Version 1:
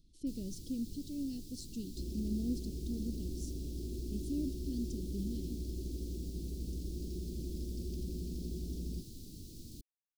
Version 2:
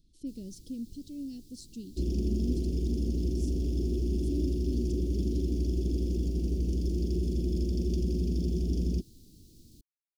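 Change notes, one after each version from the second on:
first sound -6.0 dB; second sound +11.5 dB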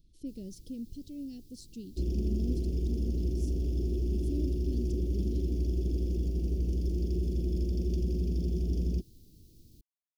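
speech +3.0 dB; master: add graphic EQ 250/4000/8000 Hz -5/-4/-6 dB

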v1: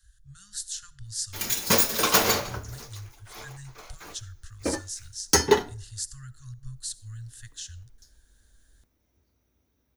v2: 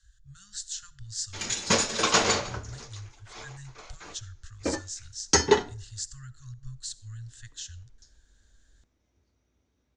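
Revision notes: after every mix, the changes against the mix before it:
master: add elliptic low-pass 7500 Hz, stop band 70 dB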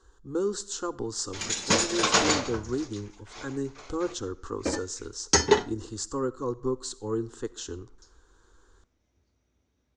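speech: remove Chebyshev band-stop 130–1700 Hz, order 4

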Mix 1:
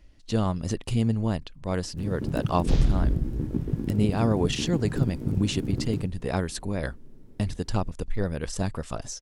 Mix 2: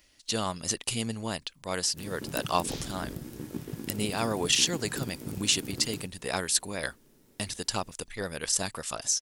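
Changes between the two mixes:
second sound -8.0 dB; master: add tilt +4 dB/oct

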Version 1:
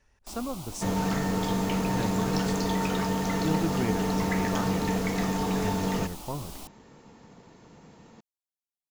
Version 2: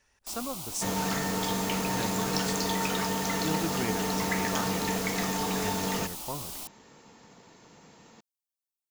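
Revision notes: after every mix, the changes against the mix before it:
master: add tilt +2 dB/oct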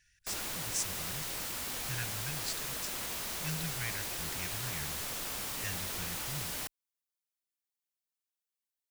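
speech: add brick-wall FIR band-stop 190–1400 Hz; first sound: remove fixed phaser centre 470 Hz, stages 6; second sound: muted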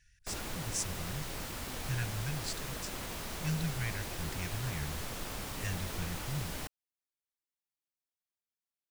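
speech: add high shelf 4200 Hz +6 dB; master: add tilt -2 dB/oct

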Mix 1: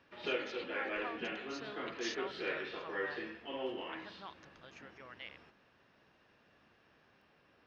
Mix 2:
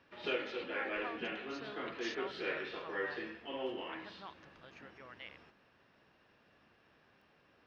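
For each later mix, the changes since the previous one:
speech: add air absorption 110 m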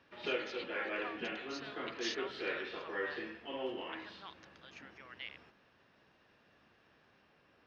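speech: add tilt shelf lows -8.5 dB, about 1300 Hz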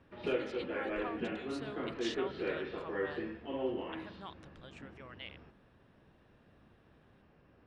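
speech: remove rippled Chebyshev low-pass 6600 Hz, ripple 6 dB; master: add tilt -3.5 dB/oct

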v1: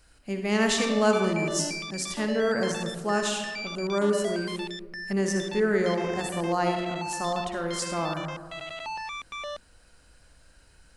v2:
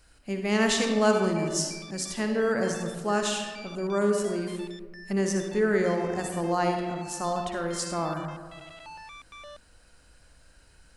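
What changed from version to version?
background -9.5 dB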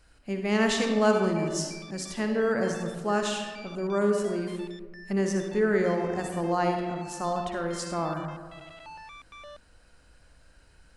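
master: add high shelf 4900 Hz -7 dB

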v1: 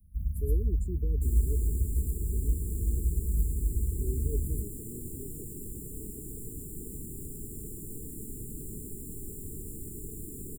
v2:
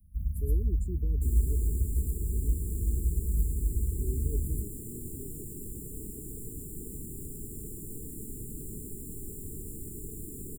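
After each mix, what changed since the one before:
speech: add bell 480 Hz -6.5 dB 0.39 oct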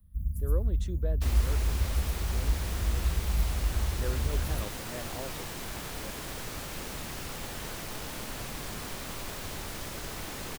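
master: remove brick-wall FIR band-stop 460–7000 Hz

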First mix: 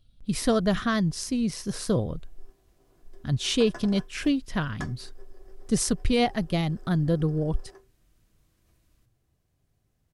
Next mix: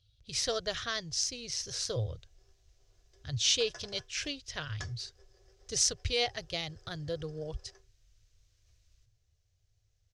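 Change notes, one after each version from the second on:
speech: add HPF 76 Hz; master: add EQ curve 110 Hz 0 dB, 200 Hz -29 dB, 490 Hz -7 dB, 990 Hz -13 dB, 1500 Hz -7 dB, 6200 Hz +6 dB, 10000 Hz -14 dB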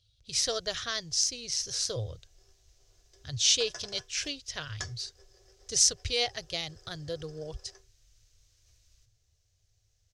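background +3.0 dB; master: add tone controls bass -2 dB, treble +6 dB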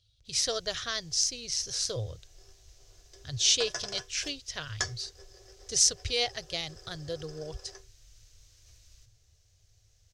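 background +7.0 dB

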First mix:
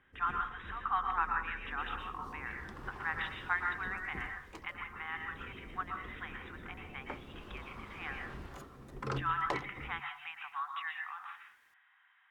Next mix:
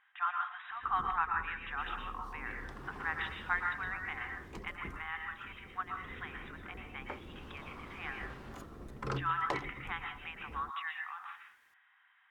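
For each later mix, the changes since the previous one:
first sound: entry +0.70 s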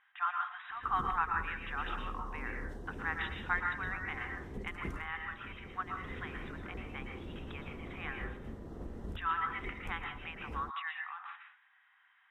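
first sound +5.5 dB; second sound: muted

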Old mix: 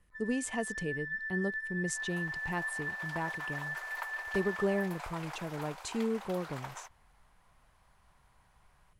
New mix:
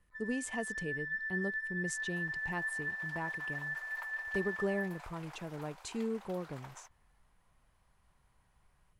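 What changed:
speech -3.5 dB; second sound -8.0 dB

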